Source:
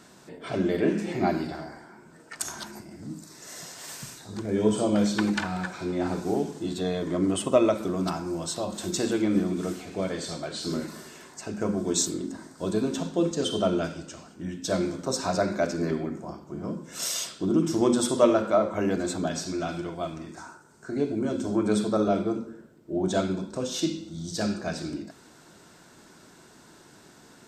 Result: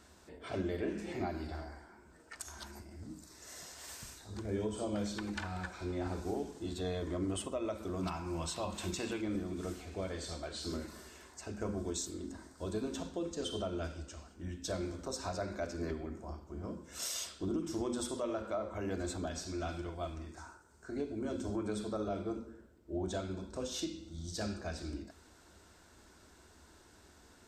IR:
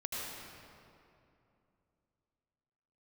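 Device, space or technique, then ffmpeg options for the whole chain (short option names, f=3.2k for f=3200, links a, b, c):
car stereo with a boomy subwoofer: -filter_complex "[0:a]asettb=1/sr,asplit=3[a][b][c];[a]atrim=end=8.034[d];[b]atrim=start=8.03:end=9.21,asetpts=PTS-STARTPTS,afade=t=in:d=0.004:c=qsin,afade=t=out:st=1.176:d=0.004:c=qsin,equalizer=f=160:t=o:w=0.67:g=7,equalizer=f=1k:t=o:w=0.67:g=7,equalizer=f=2.5k:t=o:w=0.67:g=11[e];[c]atrim=start=9.206[f];[d][e]acrossfade=d=0.004:c1=hsin:c2=qsin[g];[g][f]acrossfade=d=0.004:c1=qsin:c2=hsin,lowshelf=f=100:t=q:w=3:g=10.5,alimiter=limit=-19dB:level=0:latency=1:release=286,volume=-8dB"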